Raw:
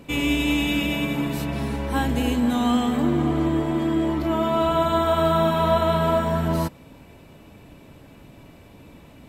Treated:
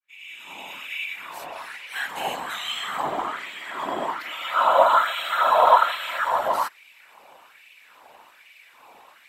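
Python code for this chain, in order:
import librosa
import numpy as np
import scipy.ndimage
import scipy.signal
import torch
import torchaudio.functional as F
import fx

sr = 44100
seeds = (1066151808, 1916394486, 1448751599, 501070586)

y = fx.fade_in_head(x, sr, length_s=2.77)
y = fx.filter_lfo_highpass(y, sr, shape='sine', hz=1.2, low_hz=770.0, high_hz=2400.0, q=3.3)
y = fx.whisperise(y, sr, seeds[0])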